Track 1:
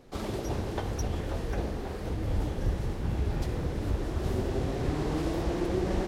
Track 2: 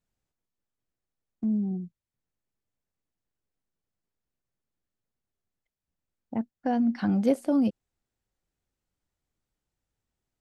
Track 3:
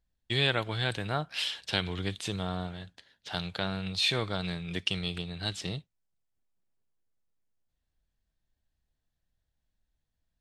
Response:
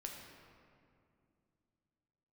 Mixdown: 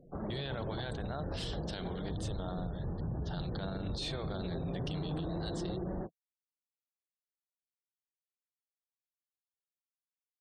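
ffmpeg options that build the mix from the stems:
-filter_complex "[0:a]lowpass=f=2300:w=0.5412,lowpass=f=2300:w=1.3066,alimiter=limit=0.0668:level=0:latency=1:release=272,flanger=delay=5.9:depth=5.4:regen=82:speed=1.2:shape=sinusoidal,volume=0.841[s0];[2:a]bass=f=250:g=-8,treble=f=4000:g=0,volume=0.501,asplit=2[s1][s2];[s2]volume=0.112[s3];[s0][s1]amix=inputs=2:normalize=0,equalizer=f=160:t=o:w=0.67:g=10,equalizer=f=630:t=o:w=0.67:g=4,equalizer=f=2500:t=o:w=0.67:g=-12,alimiter=level_in=1.88:limit=0.0631:level=0:latency=1:release=17,volume=0.531,volume=1[s4];[3:a]atrim=start_sample=2205[s5];[s3][s5]afir=irnorm=-1:irlink=0[s6];[s4][s6]amix=inputs=2:normalize=0,afftfilt=real='re*gte(hypot(re,im),0.002)':imag='im*gte(hypot(re,im),0.002)':win_size=1024:overlap=0.75"

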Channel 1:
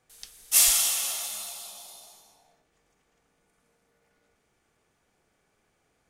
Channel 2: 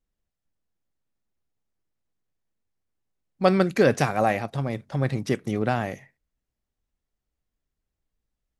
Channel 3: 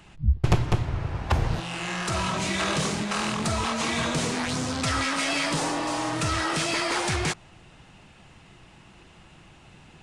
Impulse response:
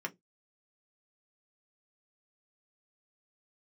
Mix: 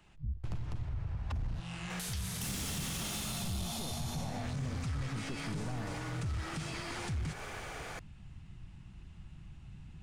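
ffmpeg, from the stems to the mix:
-filter_complex "[0:a]asplit=2[s0][s1];[s1]highpass=f=720:p=1,volume=63.1,asoftclip=type=tanh:threshold=0.501[s2];[s0][s2]amix=inputs=2:normalize=0,lowpass=f=3200:p=1,volume=0.501,adelay=1900,volume=1.26[s3];[1:a]asoftclip=type=tanh:threshold=0.0891,aemphasis=mode=reproduction:type=bsi,volume=0.266[s4];[2:a]asubboost=boost=11.5:cutoff=140,volume=0.237[s5];[s3][s4][s5]amix=inputs=3:normalize=0,acrossover=split=270[s6][s7];[s7]acompressor=threshold=0.0158:ratio=4[s8];[s6][s8]amix=inputs=2:normalize=0,asoftclip=type=tanh:threshold=0.0794,alimiter=level_in=2.11:limit=0.0631:level=0:latency=1:release=107,volume=0.473"

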